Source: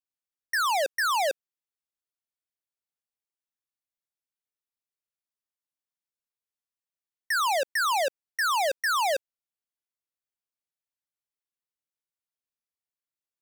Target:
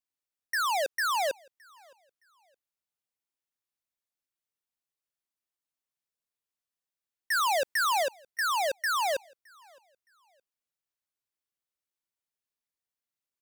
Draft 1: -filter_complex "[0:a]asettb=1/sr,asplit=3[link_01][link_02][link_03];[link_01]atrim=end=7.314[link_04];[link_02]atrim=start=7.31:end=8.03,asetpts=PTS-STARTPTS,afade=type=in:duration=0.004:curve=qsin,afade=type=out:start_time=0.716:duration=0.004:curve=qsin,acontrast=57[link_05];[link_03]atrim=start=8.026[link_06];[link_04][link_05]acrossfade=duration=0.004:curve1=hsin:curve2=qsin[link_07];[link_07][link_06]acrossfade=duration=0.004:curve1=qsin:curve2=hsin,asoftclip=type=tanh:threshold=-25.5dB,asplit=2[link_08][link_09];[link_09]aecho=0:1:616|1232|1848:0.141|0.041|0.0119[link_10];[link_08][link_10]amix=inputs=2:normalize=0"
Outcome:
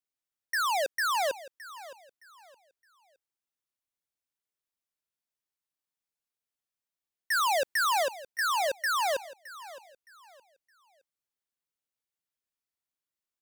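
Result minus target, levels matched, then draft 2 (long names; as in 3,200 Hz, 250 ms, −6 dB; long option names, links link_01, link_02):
echo-to-direct +11 dB
-filter_complex "[0:a]asettb=1/sr,asplit=3[link_01][link_02][link_03];[link_01]atrim=end=7.314[link_04];[link_02]atrim=start=7.31:end=8.03,asetpts=PTS-STARTPTS,afade=type=in:duration=0.004:curve=qsin,afade=type=out:start_time=0.716:duration=0.004:curve=qsin,acontrast=57[link_05];[link_03]atrim=start=8.026[link_06];[link_04][link_05]acrossfade=duration=0.004:curve1=hsin:curve2=qsin[link_07];[link_07][link_06]acrossfade=duration=0.004:curve1=qsin:curve2=hsin,asoftclip=type=tanh:threshold=-25.5dB,asplit=2[link_08][link_09];[link_09]aecho=0:1:616|1232:0.0398|0.0115[link_10];[link_08][link_10]amix=inputs=2:normalize=0"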